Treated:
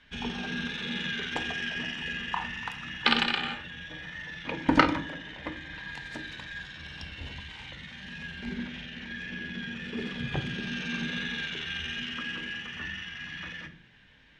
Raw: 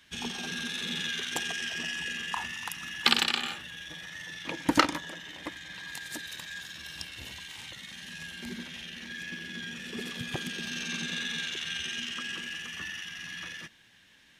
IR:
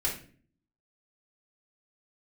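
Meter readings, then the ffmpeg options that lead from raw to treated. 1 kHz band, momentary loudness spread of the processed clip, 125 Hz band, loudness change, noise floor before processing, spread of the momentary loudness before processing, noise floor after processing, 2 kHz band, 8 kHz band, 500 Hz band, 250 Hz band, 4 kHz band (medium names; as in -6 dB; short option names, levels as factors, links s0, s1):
+2.5 dB, 15 LU, +6.5 dB, +0.5 dB, -59 dBFS, 14 LU, -53 dBFS, +1.5 dB, -13.0 dB, +3.0 dB, +4.0 dB, -2.0 dB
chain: -filter_complex "[0:a]lowpass=2900,asplit=2[s0][s1];[1:a]atrim=start_sample=2205,lowshelf=f=210:g=11[s2];[s1][s2]afir=irnorm=-1:irlink=0,volume=0.299[s3];[s0][s3]amix=inputs=2:normalize=0"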